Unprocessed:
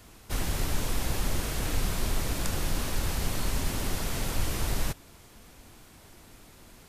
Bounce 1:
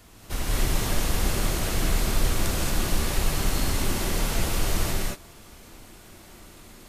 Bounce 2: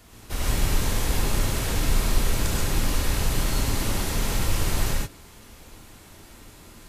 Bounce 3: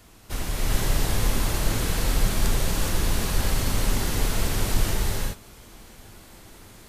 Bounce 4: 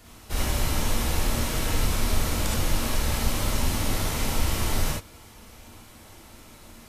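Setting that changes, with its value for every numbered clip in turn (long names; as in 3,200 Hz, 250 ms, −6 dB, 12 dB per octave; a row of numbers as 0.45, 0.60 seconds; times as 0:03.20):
reverb whose tail is shaped and stops, gate: 250, 160, 440, 90 milliseconds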